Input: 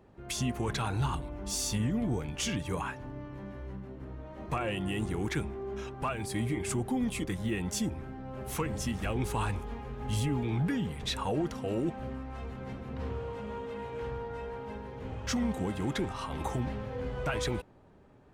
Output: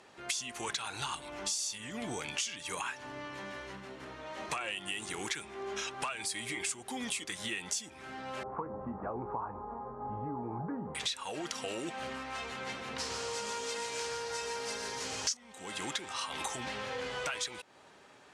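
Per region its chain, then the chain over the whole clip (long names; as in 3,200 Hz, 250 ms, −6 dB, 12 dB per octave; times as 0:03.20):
0:08.43–0:10.95: Butterworth low-pass 1,100 Hz + double-tracking delay 25 ms −11.5 dB
0:12.98–0:15.37: flat-topped bell 7,300 Hz +14.5 dB + single-tap delay 122 ms −6.5 dB
whole clip: meter weighting curve ITU-R 468; downward compressor 8 to 1, threshold −41 dBFS; level +7 dB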